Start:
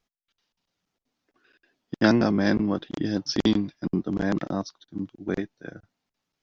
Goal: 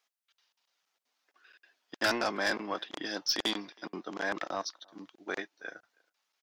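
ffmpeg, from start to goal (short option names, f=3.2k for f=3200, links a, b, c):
-filter_complex "[0:a]highpass=800,asplit=2[a][b];[b]adelay=320,highpass=300,lowpass=3.4k,asoftclip=type=hard:threshold=-19.5dB,volume=-29dB[c];[a][c]amix=inputs=2:normalize=0,aeval=exprs='(tanh(17.8*val(0)+0.05)-tanh(0.05))/17.8':c=same,volume=3.5dB"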